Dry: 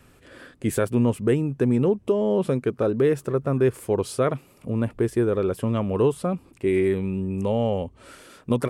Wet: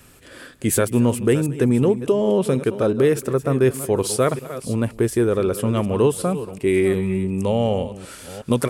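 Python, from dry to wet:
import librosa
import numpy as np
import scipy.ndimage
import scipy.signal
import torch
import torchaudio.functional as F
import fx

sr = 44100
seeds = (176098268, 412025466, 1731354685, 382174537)

y = fx.reverse_delay(x, sr, ms=366, wet_db=-13.0)
y = fx.high_shelf(y, sr, hz=3900.0, db=10.5)
y = y + 10.0 ** (-21.5 / 20.0) * np.pad(y, (int(226 * sr / 1000.0), 0))[:len(y)]
y = y * 10.0 ** (3.0 / 20.0)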